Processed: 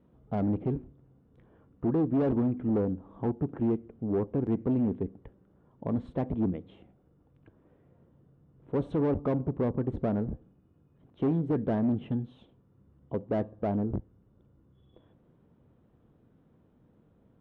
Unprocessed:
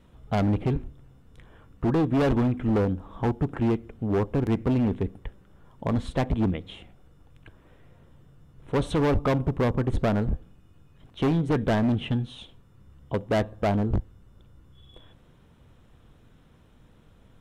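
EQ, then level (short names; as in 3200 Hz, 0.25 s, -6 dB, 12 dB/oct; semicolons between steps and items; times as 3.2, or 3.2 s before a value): band-pass 290 Hz, Q 0.67; -2.5 dB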